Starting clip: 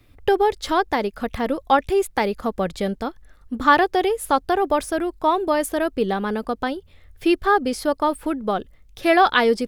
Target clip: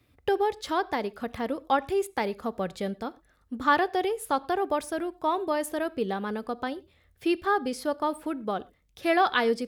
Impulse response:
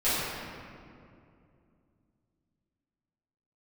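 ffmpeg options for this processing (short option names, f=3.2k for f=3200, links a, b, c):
-filter_complex "[0:a]highpass=73,asplit=2[a][b];[1:a]atrim=start_sample=2205,afade=t=out:st=0.17:d=0.01,atrim=end_sample=7938[c];[b][c]afir=irnorm=-1:irlink=0,volume=-30dB[d];[a][d]amix=inputs=2:normalize=0,volume=-7.5dB"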